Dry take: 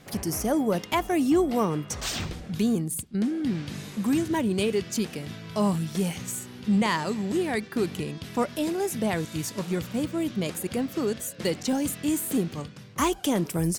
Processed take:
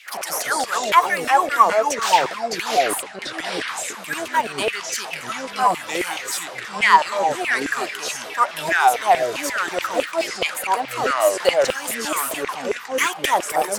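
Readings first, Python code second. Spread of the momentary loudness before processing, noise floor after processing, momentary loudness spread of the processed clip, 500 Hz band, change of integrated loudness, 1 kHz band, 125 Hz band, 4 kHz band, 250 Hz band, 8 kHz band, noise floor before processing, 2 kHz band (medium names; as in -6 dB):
8 LU, -35 dBFS, 10 LU, +6.0 dB, +7.0 dB, +15.5 dB, -13.5 dB, +9.5 dB, -9.5 dB, +7.0 dB, -44 dBFS, +15.0 dB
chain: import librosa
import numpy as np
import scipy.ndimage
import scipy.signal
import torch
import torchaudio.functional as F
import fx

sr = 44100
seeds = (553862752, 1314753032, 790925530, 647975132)

y = fx.filter_lfo_highpass(x, sr, shape='saw_down', hz=4.7, low_hz=560.0, high_hz=2800.0, q=6.2)
y = fx.echo_pitch(y, sr, ms=116, semitones=-4, count=2, db_per_echo=-3.0)
y = y * 10.0 ** (5.0 / 20.0)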